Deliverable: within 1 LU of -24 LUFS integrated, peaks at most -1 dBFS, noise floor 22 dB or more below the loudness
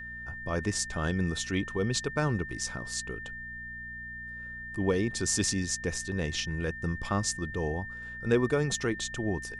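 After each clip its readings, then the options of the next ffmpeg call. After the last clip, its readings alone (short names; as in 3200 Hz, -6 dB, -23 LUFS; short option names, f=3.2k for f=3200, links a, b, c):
hum 60 Hz; harmonics up to 240 Hz; hum level -47 dBFS; steady tone 1800 Hz; tone level -39 dBFS; loudness -31.5 LUFS; peak -11.5 dBFS; loudness target -24.0 LUFS
-> -af "bandreject=f=60:t=h:w=4,bandreject=f=120:t=h:w=4,bandreject=f=180:t=h:w=4,bandreject=f=240:t=h:w=4"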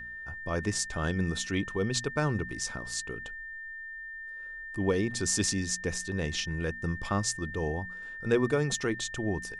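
hum none; steady tone 1800 Hz; tone level -39 dBFS
-> -af "bandreject=f=1.8k:w=30"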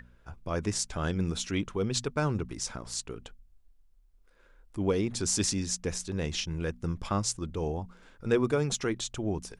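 steady tone none; loudness -31.0 LUFS; peak -12.5 dBFS; loudness target -24.0 LUFS
-> -af "volume=7dB"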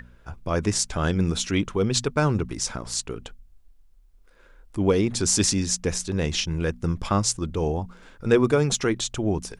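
loudness -24.0 LUFS; peak -5.5 dBFS; noise floor -53 dBFS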